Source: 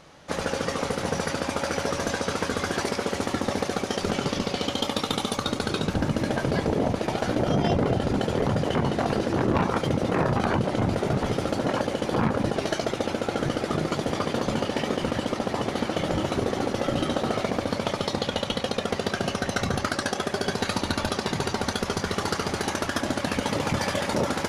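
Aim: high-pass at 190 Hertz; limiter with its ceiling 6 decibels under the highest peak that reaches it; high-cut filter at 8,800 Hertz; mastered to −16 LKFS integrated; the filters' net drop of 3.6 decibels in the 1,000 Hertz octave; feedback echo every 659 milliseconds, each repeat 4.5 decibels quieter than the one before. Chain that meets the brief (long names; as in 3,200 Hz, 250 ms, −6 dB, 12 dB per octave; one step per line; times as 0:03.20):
high-pass filter 190 Hz
low-pass filter 8,800 Hz
parametric band 1,000 Hz −5 dB
brickwall limiter −18 dBFS
repeating echo 659 ms, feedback 60%, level −4.5 dB
level +13 dB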